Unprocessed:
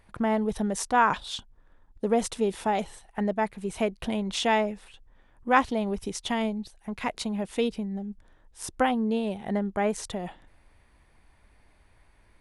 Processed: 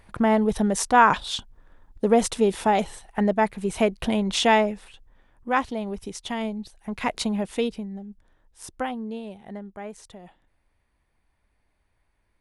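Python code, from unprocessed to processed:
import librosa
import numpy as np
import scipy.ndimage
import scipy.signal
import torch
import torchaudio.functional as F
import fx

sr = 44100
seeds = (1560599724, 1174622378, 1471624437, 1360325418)

y = fx.gain(x, sr, db=fx.line((4.49, 5.5), (5.57, -2.0), (6.3, -2.0), (7.25, 5.5), (8.06, -4.0), (8.67, -4.0), (9.84, -11.0)))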